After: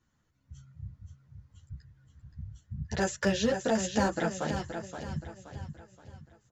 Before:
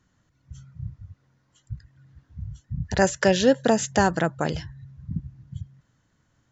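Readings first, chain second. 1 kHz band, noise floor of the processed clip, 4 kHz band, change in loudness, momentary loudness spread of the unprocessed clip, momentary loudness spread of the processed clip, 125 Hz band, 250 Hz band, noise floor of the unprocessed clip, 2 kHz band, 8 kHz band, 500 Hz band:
−8.0 dB, −73 dBFS, −6.5 dB, −8.0 dB, 21 LU, 21 LU, −6.5 dB, −6.5 dB, −69 dBFS, −7.5 dB, can't be measured, −8.5 dB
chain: in parallel at −7 dB: wave folding −13.5 dBFS
on the sum: repeating echo 524 ms, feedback 41%, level −8 dB
string-ensemble chorus
level −7 dB

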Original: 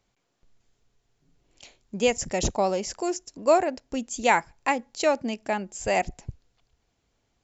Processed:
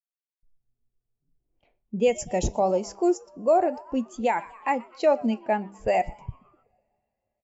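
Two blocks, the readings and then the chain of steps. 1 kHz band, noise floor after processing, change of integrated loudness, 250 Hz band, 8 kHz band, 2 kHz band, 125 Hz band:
0.0 dB, below −85 dBFS, +0.5 dB, +3.0 dB, can't be measured, −6.0 dB, +1.0 dB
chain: hum removal 198.6 Hz, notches 30
on a send: echo with shifted repeats 123 ms, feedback 61%, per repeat +120 Hz, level −19.5 dB
on the sum: low-pass that shuts in the quiet parts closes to 1,500 Hz, open at −22.5 dBFS
in parallel at −2.5 dB: downward compressor, threshold −38 dBFS, peak gain reduction 21.5 dB
on the sum: brickwall limiter −14.5 dBFS, peak gain reduction 8 dB
noise gate with hold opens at −59 dBFS
coupled-rooms reverb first 0.31 s, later 4.9 s, from −18 dB, DRR 16 dB
every bin expanded away from the loudest bin 1.5 to 1
level +2.5 dB

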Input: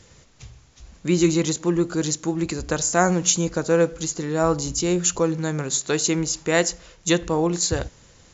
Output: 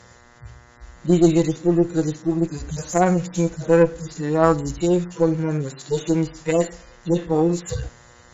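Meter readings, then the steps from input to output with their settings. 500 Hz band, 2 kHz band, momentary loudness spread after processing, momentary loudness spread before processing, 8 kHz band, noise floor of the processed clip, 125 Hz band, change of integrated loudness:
+2.5 dB, −5.0 dB, 11 LU, 7 LU, can't be measured, −50 dBFS, +3.0 dB, +1.0 dB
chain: harmonic-percussive split with one part muted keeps harmonic
hum with harmonics 120 Hz, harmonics 17, −56 dBFS 0 dB per octave
harmonic generator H 2 −14 dB, 6 −32 dB, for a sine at −7.5 dBFS
level +3.5 dB

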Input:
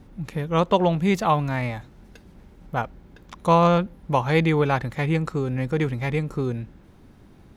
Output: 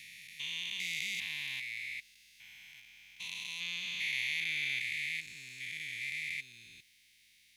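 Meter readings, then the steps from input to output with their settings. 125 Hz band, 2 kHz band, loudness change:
−36.5 dB, −3.0 dB, −13.0 dB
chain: spectrum averaged block by block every 400 ms
elliptic high-pass filter 2,100 Hz, stop band 40 dB
level +6 dB

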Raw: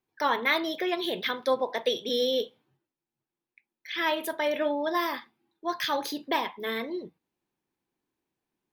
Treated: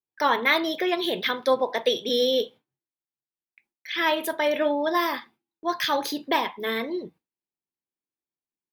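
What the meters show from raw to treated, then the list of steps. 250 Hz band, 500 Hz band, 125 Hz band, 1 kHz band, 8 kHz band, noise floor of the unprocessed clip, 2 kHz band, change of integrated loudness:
+4.0 dB, +4.0 dB, can't be measured, +4.0 dB, +4.0 dB, below −85 dBFS, +4.0 dB, +4.0 dB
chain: noise gate with hold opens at −52 dBFS
level +4 dB

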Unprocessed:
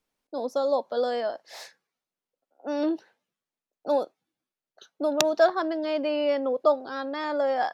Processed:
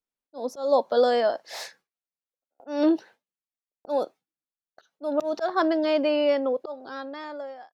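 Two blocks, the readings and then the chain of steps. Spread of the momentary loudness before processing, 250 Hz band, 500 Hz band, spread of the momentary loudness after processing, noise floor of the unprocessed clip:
16 LU, +3.5 dB, +0.5 dB, 15 LU, below −85 dBFS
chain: fade-out on the ending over 2.13 s
noise gate with hold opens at −52 dBFS
volume swells 228 ms
level +6 dB

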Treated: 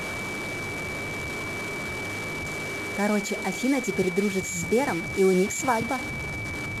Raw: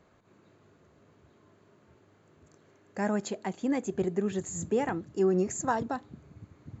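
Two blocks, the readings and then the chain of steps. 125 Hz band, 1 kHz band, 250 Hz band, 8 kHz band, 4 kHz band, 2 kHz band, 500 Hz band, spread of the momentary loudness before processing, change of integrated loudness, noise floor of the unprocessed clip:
+6.5 dB, +5.5 dB, +5.0 dB, can't be measured, +15.0 dB, +15.5 dB, +5.0 dB, 11 LU, +4.0 dB, −63 dBFS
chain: linear delta modulator 64 kbit/s, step −33 dBFS
steady tone 2,300 Hz −37 dBFS
level +4.5 dB

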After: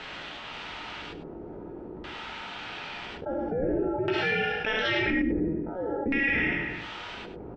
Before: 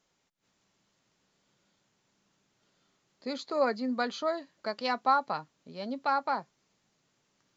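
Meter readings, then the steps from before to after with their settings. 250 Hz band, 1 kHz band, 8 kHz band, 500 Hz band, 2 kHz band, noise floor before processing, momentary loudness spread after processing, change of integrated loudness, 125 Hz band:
+8.0 dB, −5.0 dB, can't be measured, +4.0 dB, +12.0 dB, −76 dBFS, 15 LU, +2.0 dB, +17.5 dB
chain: peak hold with a decay on every bin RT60 0.49 s
high-shelf EQ 4,600 Hz −11.5 dB
brickwall limiter −20 dBFS, peak gain reduction 6 dB
ring modulation 1,100 Hz
auto-filter low-pass square 0.49 Hz 380–3,200 Hz
single-tap delay 100 ms −15 dB
reverb whose tail is shaped and stops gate 130 ms rising, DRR −1.5 dB
envelope flattener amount 70%
level −2 dB

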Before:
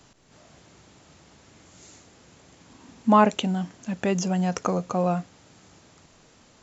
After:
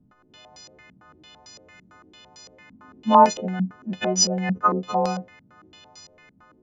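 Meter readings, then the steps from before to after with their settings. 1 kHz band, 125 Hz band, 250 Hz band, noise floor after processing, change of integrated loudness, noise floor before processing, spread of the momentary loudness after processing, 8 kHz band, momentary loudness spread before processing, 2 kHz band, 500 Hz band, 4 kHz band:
+5.5 dB, −2.0 dB, −1.5 dB, −59 dBFS, +3.0 dB, −57 dBFS, 13 LU, can't be measured, 11 LU, +0.5 dB, +2.0 dB, +8.0 dB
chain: every partial snapped to a pitch grid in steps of 3 semitones
low-pass on a step sequencer 8.9 Hz 210–5,200 Hz
level −2.5 dB

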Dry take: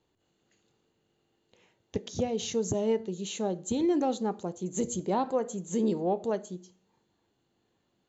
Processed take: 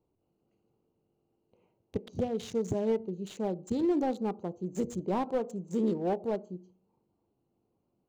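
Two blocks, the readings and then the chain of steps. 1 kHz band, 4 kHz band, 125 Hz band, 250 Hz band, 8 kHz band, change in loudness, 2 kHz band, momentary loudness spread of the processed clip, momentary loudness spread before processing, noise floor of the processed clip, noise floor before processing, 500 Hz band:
−3.0 dB, −9.0 dB, −1.0 dB, −1.0 dB, can't be measured, −2.0 dB, −2.5 dB, 10 LU, 8 LU, −78 dBFS, −76 dBFS, −2.0 dB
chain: adaptive Wiener filter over 25 samples
slew-rate limiting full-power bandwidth 41 Hz
level −1 dB

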